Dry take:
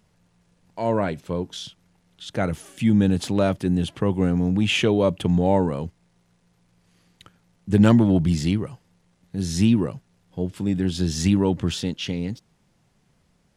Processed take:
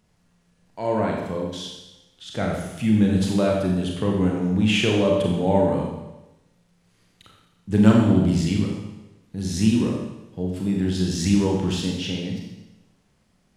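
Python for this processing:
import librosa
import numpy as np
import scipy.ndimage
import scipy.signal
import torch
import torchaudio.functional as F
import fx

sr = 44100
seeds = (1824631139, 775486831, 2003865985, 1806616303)

y = fx.rev_schroeder(x, sr, rt60_s=1.0, comb_ms=29, drr_db=-1.0)
y = y * librosa.db_to_amplitude(-3.0)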